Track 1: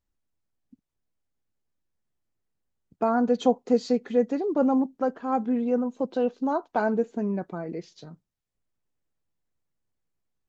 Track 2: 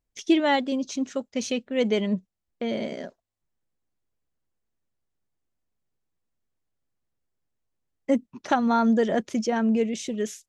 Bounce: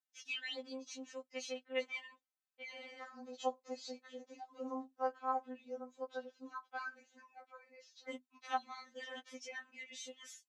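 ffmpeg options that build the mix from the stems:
ffmpeg -i stem1.wav -i stem2.wav -filter_complex "[0:a]volume=-6.5dB[link_01];[1:a]lowpass=frequency=3500:poles=1,volume=-5.5dB[link_02];[link_01][link_02]amix=inputs=2:normalize=0,highpass=1000,afftfilt=real='re*3.46*eq(mod(b,12),0)':imag='im*3.46*eq(mod(b,12),0)':win_size=2048:overlap=0.75" out.wav

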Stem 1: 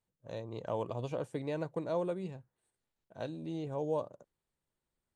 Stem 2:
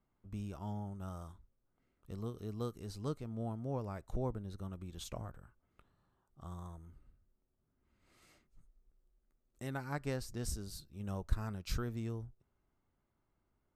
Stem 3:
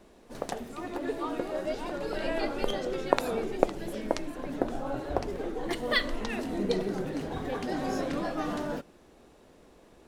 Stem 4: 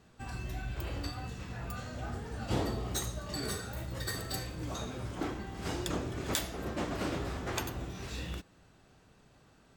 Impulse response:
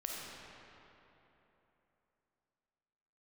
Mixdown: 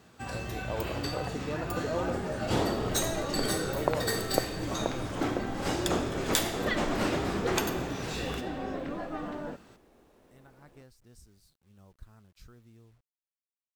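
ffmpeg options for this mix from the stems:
-filter_complex "[0:a]volume=-0.5dB[link_01];[1:a]adelay=700,volume=-16.5dB[link_02];[2:a]lowpass=2800,adelay=750,volume=-4.5dB[link_03];[3:a]highpass=51,lowshelf=frequency=100:gain=-9,volume=2.5dB,asplit=2[link_04][link_05];[link_05]volume=-3.5dB[link_06];[4:a]atrim=start_sample=2205[link_07];[link_06][link_07]afir=irnorm=-1:irlink=0[link_08];[link_01][link_02][link_03][link_04][link_08]amix=inputs=5:normalize=0,acrusher=bits=11:mix=0:aa=0.000001"

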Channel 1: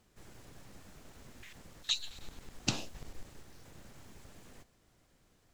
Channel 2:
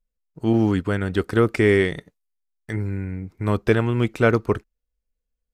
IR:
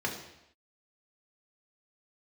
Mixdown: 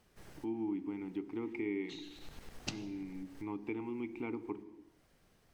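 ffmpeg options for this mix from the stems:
-filter_complex "[0:a]equalizer=frequency=7200:width=6.9:gain=-8,volume=-1dB,asplit=2[link_01][link_02];[link_02]volume=-14.5dB[link_03];[1:a]asplit=3[link_04][link_05][link_06];[link_04]bandpass=frequency=300:width_type=q:width=8,volume=0dB[link_07];[link_05]bandpass=frequency=870:width_type=q:width=8,volume=-6dB[link_08];[link_06]bandpass=frequency=2240:width_type=q:width=8,volume=-9dB[link_09];[link_07][link_08][link_09]amix=inputs=3:normalize=0,volume=-1dB,asplit=3[link_10][link_11][link_12];[link_11]volume=-14.5dB[link_13];[link_12]apad=whole_len=244043[link_14];[link_01][link_14]sidechaincompress=threshold=-48dB:ratio=8:attack=9.1:release=340[link_15];[2:a]atrim=start_sample=2205[link_16];[link_03][link_13]amix=inputs=2:normalize=0[link_17];[link_17][link_16]afir=irnorm=-1:irlink=0[link_18];[link_15][link_10][link_18]amix=inputs=3:normalize=0,acompressor=threshold=-42dB:ratio=2"

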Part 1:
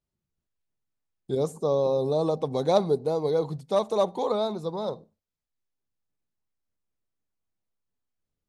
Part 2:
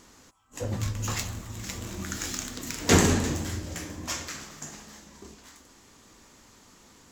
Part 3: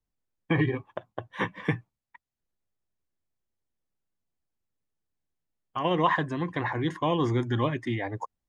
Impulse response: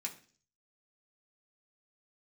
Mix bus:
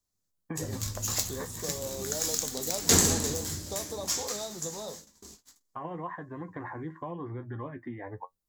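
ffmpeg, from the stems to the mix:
-filter_complex "[0:a]volume=-3.5dB[link_01];[1:a]agate=range=-34dB:threshold=-48dB:ratio=16:detection=peak,volume=-6.5dB[link_02];[2:a]lowpass=frequency=1800:width=0.5412,lowpass=frequency=1800:width=1.3066,volume=0dB[link_03];[link_01][link_03]amix=inputs=2:normalize=0,flanger=delay=9.4:depth=3.3:regen=45:speed=0.94:shape=triangular,acompressor=threshold=-36dB:ratio=4,volume=0dB[link_04];[link_02][link_04]amix=inputs=2:normalize=0,aexciter=amount=4.4:drive=2.6:freq=3800"

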